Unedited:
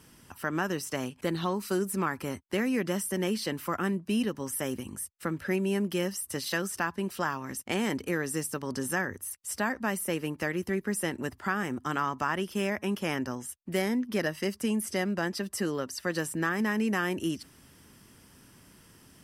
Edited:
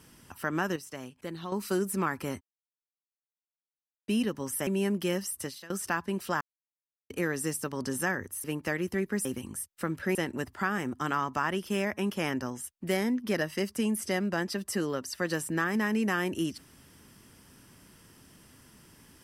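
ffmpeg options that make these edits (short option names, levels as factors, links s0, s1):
-filter_complex "[0:a]asplit=12[s0][s1][s2][s3][s4][s5][s6][s7][s8][s9][s10][s11];[s0]atrim=end=0.762[s12];[s1]atrim=start=0.758:end=1.522,asetpts=PTS-STARTPTS,volume=0.376[s13];[s2]atrim=start=1.518:end=2.41,asetpts=PTS-STARTPTS,afade=t=out:st=0.888:d=0.004:c=hsin[s14];[s3]atrim=start=2.41:end=4.08,asetpts=PTS-STARTPTS,volume=0[s15];[s4]atrim=start=4.08:end=4.672,asetpts=PTS-STARTPTS,afade=t=in:d=0.004:c=hsin[s16];[s5]atrim=start=5.568:end=6.6,asetpts=PTS-STARTPTS,afade=t=out:st=0.742:d=0.29:c=qua:silence=0.1[s17];[s6]atrim=start=6.6:end=7.31,asetpts=PTS-STARTPTS,afade=t=in:d=0.004:c=hsin:silence=0.1,afade=t=out:st=0.706:d=0.004:c=hsin[s18];[s7]atrim=start=7.31:end=8,asetpts=PTS-STARTPTS,volume=0[s19];[s8]atrim=start=8:end=9.342,asetpts=PTS-STARTPTS,afade=t=in:d=0.004:c=hsin[s20];[s9]atrim=start=10.188:end=11.002[s21];[s10]atrim=start=4.668:end=5.572[s22];[s11]atrim=start=10.998[s23];[s12][s13]acrossfade=d=0.004:c1=hsin:c2=hsin[s24];[s14][s15][s16]concat=n=3:v=0:a=1[s25];[s24][s25]acrossfade=d=0.004:c1=hsin:c2=hsin[s26];[s17][s18][s19][s20]concat=n=4:v=0:a=1[s27];[s26][s27]acrossfade=d=0.004:c1=hsin:c2=hsin[s28];[s28][s21]acrossfade=d=0.004:c1=hsin:c2=hsin[s29];[s29][s22]acrossfade=d=0.004:c1=hsin:c2=hsin[s30];[s30][s23]acrossfade=d=0.004:c1=hsin:c2=hsin"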